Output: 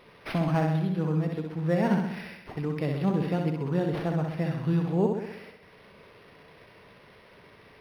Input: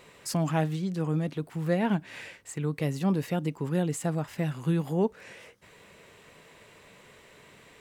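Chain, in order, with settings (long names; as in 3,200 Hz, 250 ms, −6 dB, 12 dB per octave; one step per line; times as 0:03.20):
flutter between parallel walls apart 11 metres, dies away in 0.84 s
linearly interpolated sample-rate reduction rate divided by 6×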